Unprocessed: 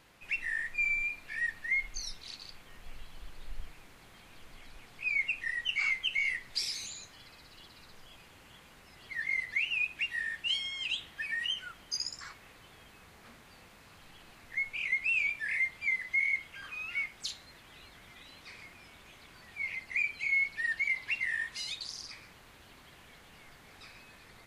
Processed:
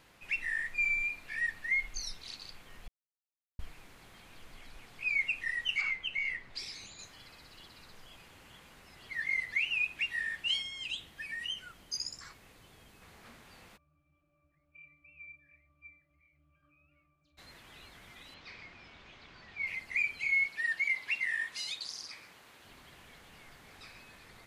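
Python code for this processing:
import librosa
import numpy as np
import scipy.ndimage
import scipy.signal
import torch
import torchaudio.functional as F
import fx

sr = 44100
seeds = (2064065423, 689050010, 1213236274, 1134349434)

y = fx.lowpass(x, sr, hz=2000.0, slope=6, at=(5.81, 6.99))
y = fx.peak_eq(y, sr, hz=1600.0, db=-5.5, octaves=2.8, at=(10.62, 13.02))
y = fx.octave_resonator(y, sr, note='D', decay_s=0.43, at=(13.76, 17.37), fade=0.02)
y = fx.lowpass(y, sr, hz=5500.0, slope=24, at=(18.34, 19.67))
y = fx.highpass(y, sr, hz=280.0, slope=6, at=(20.46, 22.65))
y = fx.edit(y, sr, fx.silence(start_s=2.88, length_s=0.71), tone=tone)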